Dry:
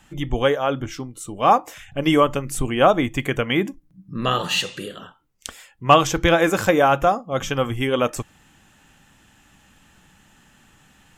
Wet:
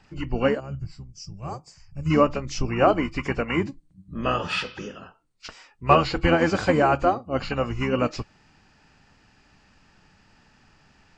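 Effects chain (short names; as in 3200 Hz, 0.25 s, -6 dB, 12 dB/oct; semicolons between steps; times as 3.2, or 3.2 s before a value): nonlinear frequency compression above 2200 Hz 1.5:1; harmoniser -12 st -6 dB; spectral gain 0.6–2.11, 210–4500 Hz -18 dB; gain -4 dB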